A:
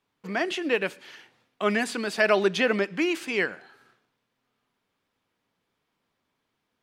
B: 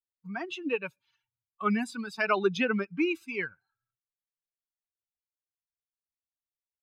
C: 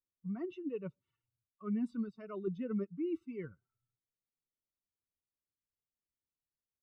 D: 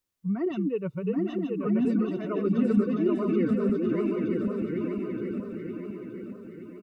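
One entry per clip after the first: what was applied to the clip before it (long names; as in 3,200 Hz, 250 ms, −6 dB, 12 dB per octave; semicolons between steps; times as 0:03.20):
spectral dynamics exaggerated over time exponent 2; high-shelf EQ 4,000 Hz −10 dB; comb filter 0.8 ms, depth 55%
reversed playback; downward compressor 12 to 1, threshold −36 dBFS, peak gain reduction 16.5 dB; reversed playback; moving average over 54 samples; level +6 dB
feedback delay that plays each chunk backwards 462 ms, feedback 66%, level −2 dB; in parallel at +2.5 dB: brickwall limiter −32 dBFS, peak gain reduction 8.5 dB; on the sum: bouncing-ball delay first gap 780 ms, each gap 0.65×, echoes 5; level +3.5 dB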